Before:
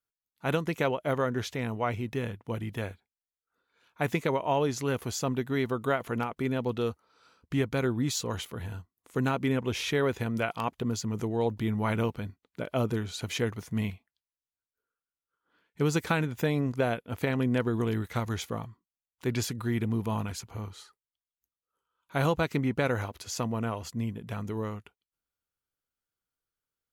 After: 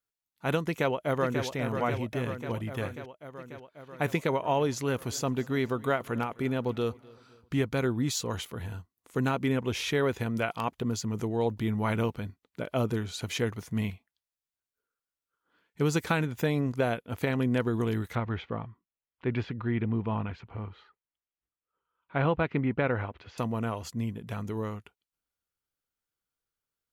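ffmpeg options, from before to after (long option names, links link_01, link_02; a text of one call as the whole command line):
ffmpeg -i in.wav -filter_complex "[0:a]asplit=2[link_01][link_02];[link_02]afade=type=in:start_time=0.64:duration=0.01,afade=type=out:start_time=1.43:duration=0.01,aecho=0:1:540|1080|1620|2160|2700|3240|3780|4320|4860|5400|5940:0.446684|0.312679|0.218875|0.153212|0.107249|0.0750741|0.0525519|0.0367863|0.0257504|0.0180253|0.0126177[link_03];[link_01][link_03]amix=inputs=2:normalize=0,asplit=3[link_04][link_05][link_06];[link_04]afade=type=out:start_time=5.05:duration=0.02[link_07];[link_05]aecho=1:1:257|514|771:0.0668|0.0287|0.0124,afade=type=in:start_time=5.05:duration=0.02,afade=type=out:start_time=7.79:duration=0.02[link_08];[link_06]afade=type=in:start_time=7.79:duration=0.02[link_09];[link_07][link_08][link_09]amix=inputs=3:normalize=0,asettb=1/sr,asplit=3[link_10][link_11][link_12];[link_10]atrim=end=18.154[link_13];[link_11]atrim=start=18.15:end=23.38,asetpts=PTS-STARTPTS,afade=type=in:duration=0.004:curve=qsin,afade=type=out:start_time=5.226:duration=0.004:curve=qsin,lowpass=frequency=2900:width=0.5412,lowpass=frequency=2900:width=1.3066[link_14];[link_12]atrim=start=23.376[link_15];[link_13][link_14]acrossfade=duration=0.004:curve1=hsin:curve2=qsin[link_16];[link_16][link_15]acrossfade=duration=0.004:curve1=qsin:curve2=hsin" out.wav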